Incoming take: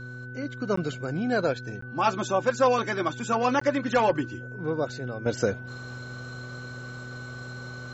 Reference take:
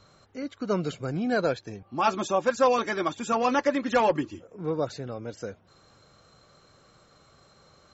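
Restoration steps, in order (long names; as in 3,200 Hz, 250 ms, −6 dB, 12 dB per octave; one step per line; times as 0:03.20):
hum removal 123.9 Hz, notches 4
notch filter 1,500 Hz, Q 30
repair the gap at 0:00.76/0:01.81/0:03.60, 14 ms
level 0 dB, from 0:05.26 −11 dB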